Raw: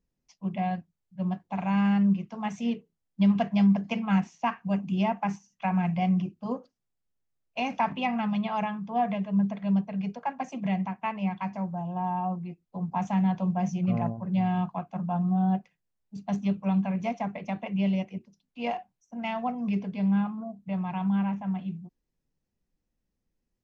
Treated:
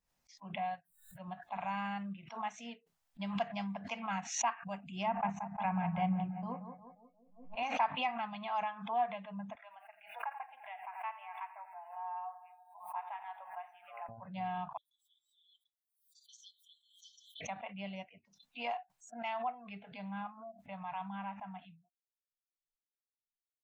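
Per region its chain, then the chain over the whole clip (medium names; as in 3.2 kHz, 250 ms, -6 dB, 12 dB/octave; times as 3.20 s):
0.74–1.28 s: bass shelf 130 Hz -6.5 dB + upward compressor, threshold -37 dBFS
5.06–7.63 s: tone controls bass +13 dB, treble -10 dB + feedback echo behind a low-pass 177 ms, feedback 55%, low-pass 1.7 kHz, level -8 dB
9.55–14.09 s: high-pass 940 Hz + distance through air 400 m + bit-crushed delay 85 ms, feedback 80%, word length 11-bit, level -14.5 dB
14.77–17.41 s: brick-wall FIR high-pass 3 kHz + comb 6.5 ms, depth 98%
19.45–19.92 s: low-pass 4.8 kHz + peaking EQ 260 Hz -5 dB 0.62 oct
whole clip: spectral noise reduction 24 dB; resonant low shelf 540 Hz -11.5 dB, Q 1.5; swell ahead of each attack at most 95 dB/s; trim -7 dB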